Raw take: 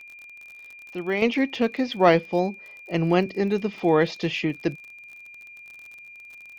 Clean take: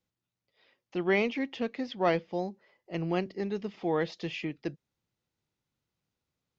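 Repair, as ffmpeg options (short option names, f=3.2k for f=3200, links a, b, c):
-af "adeclick=t=4,bandreject=f=2.4k:w=30,asetnsamples=n=441:p=0,asendcmd='1.22 volume volume -9.5dB',volume=0dB"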